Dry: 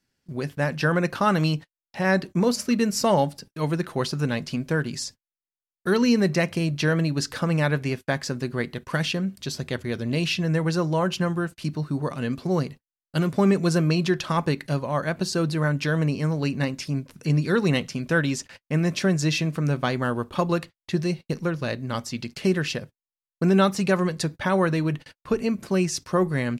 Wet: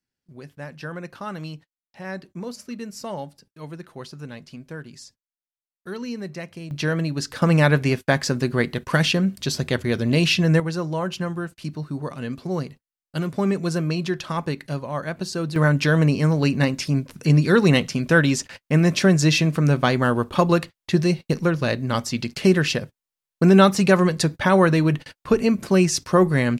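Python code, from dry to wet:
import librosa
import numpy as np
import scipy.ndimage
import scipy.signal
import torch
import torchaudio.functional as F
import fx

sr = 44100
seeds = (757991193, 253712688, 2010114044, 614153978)

y = fx.gain(x, sr, db=fx.steps((0.0, -11.5), (6.71, -1.0), (7.42, 6.0), (10.6, -2.5), (15.56, 5.5)))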